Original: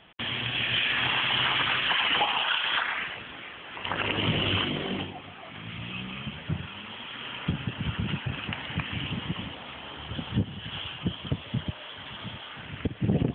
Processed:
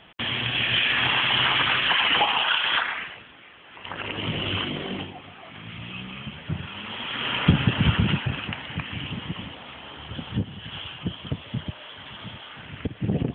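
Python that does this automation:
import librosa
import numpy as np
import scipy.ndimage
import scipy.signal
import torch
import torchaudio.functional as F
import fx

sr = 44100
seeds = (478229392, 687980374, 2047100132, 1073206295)

y = fx.gain(x, sr, db=fx.line((2.76, 4.0), (3.35, -7.5), (4.69, 0.0), (6.43, 0.0), (7.34, 11.0), (7.86, 11.0), (8.63, 0.0)))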